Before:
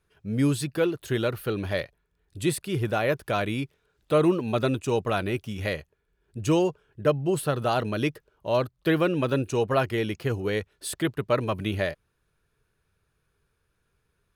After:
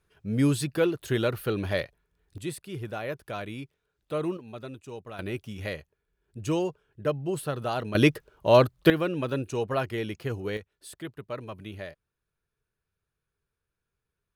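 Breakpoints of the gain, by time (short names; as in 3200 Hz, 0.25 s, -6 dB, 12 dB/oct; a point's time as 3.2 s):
0 dB
from 2.38 s -9 dB
from 4.37 s -15.5 dB
from 5.19 s -5 dB
from 7.95 s +6.5 dB
from 8.9 s -4.5 dB
from 10.57 s -12 dB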